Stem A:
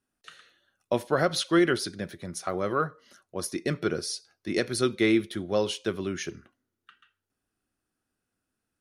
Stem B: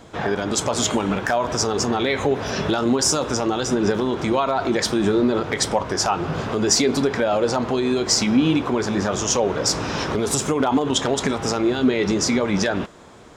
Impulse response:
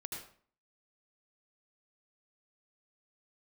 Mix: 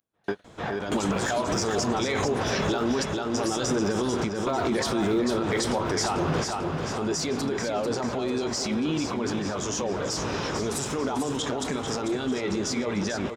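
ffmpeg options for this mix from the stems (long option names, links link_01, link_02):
-filter_complex "[0:a]acrusher=bits=6:mode=log:mix=0:aa=0.000001,volume=-11.5dB,asplit=2[link_01][link_02];[1:a]alimiter=limit=-16dB:level=0:latency=1:release=20,volume=2.5dB,asplit=2[link_03][link_04];[link_04]volume=-7dB[link_05];[link_02]apad=whole_len=589275[link_06];[link_03][link_06]sidechaingate=range=-49dB:threshold=-58dB:ratio=16:detection=peak[link_07];[link_05]aecho=0:1:444|888|1332|1776|2220|2664:1|0.41|0.168|0.0689|0.0283|0.0116[link_08];[link_01][link_07][link_08]amix=inputs=3:normalize=0,alimiter=limit=-16.5dB:level=0:latency=1:release=132"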